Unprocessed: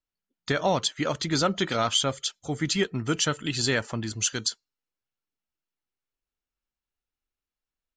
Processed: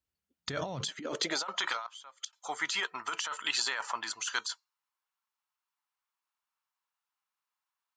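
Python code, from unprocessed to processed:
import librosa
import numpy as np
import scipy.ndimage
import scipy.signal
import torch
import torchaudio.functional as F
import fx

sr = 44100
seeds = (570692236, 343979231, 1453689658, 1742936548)

y = fx.gate_flip(x, sr, shuts_db=-21.0, range_db=-27, at=(1.86, 2.33))
y = fx.filter_sweep_highpass(y, sr, from_hz=71.0, to_hz=1000.0, start_s=0.58, end_s=1.48, q=3.7)
y = fx.over_compress(y, sr, threshold_db=-30.0, ratio=-1.0)
y = y * librosa.db_to_amplitude(-4.0)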